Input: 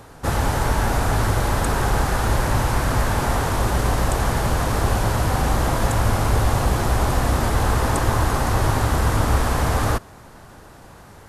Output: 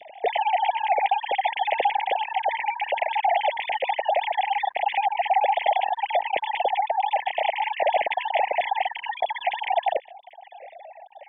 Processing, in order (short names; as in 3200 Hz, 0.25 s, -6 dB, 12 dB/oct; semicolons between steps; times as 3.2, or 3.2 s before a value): sine-wave speech; elliptic band-stop 810–2000 Hz, stop band 50 dB